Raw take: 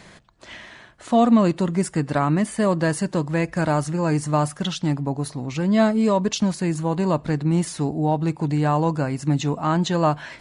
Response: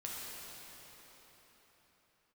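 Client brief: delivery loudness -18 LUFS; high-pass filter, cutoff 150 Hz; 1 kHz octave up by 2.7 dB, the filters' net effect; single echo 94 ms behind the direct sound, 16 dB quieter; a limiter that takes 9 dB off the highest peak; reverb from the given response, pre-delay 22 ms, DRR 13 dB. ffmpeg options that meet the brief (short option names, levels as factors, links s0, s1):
-filter_complex "[0:a]highpass=150,equalizer=f=1000:t=o:g=3.5,alimiter=limit=0.2:level=0:latency=1,aecho=1:1:94:0.158,asplit=2[s0][s1];[1:a]atrim=start_sample=2205,adelay=22[s2];[s1][s2]afir=irnorm=-1:irlink=0,volume=0.2[s3];[s0][s3]amix=inputs=2:normalize=0,volume=2.24"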